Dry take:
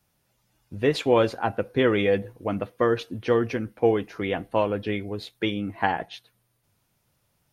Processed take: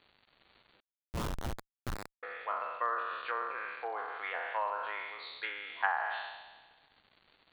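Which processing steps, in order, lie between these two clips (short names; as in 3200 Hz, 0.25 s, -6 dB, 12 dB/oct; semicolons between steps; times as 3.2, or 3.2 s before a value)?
spectral trails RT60 1.41 s; treble ducked by the level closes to 1300 Hz, closed at -17.5 dBFS; dynamic EQ 1400 Hz, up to +7 dB, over -41 dBFS, Q 1.8; ladder high-pass 720 Hz, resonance 25%; crackle 380/s -43 dBFS; brick-wall FIR low-pass 4600 Hz; 0.8–2.23 Schmitt trigger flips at -21.5 dBFS; gain -4 dB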